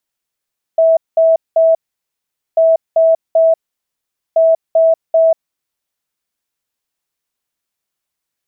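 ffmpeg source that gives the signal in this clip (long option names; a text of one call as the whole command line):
ffmpeg -f lavfi -i "aevalsrc='0.473*sin(2*PI*652*t)*clip(min(mod(mod(t,1.79),0.39),0.19-mod(mod(t,1.79),0.39))/0.005,0,1)*lt(mod(t,1.79),1.17)':duration=5.37:sample_rate=44100" out.wav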